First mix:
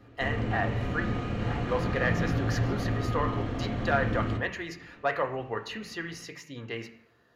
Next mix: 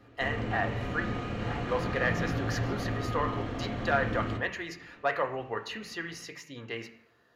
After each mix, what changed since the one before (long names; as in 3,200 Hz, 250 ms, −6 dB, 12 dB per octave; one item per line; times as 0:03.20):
master: add low-shelf EQ 280 Hz −5 dB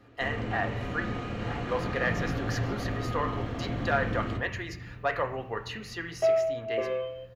second sound: unmuted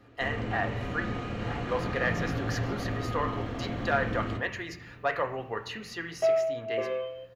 second sound: add low-shelf EQ 150 Hz −11.5 dB